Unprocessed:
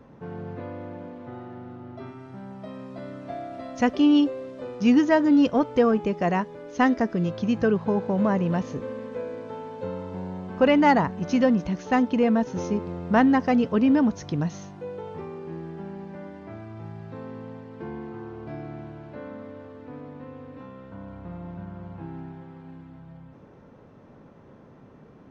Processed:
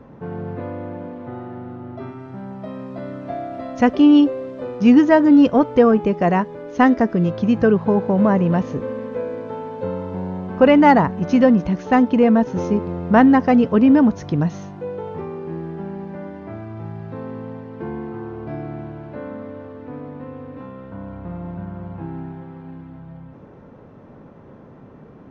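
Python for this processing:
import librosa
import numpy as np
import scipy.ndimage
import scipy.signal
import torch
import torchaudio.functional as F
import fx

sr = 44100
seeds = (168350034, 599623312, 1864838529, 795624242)

y = fx.high_shelf(x, sr, hz=3400.0, db=-10.5)
y = y * librosa.db_to_amplitude(7.0)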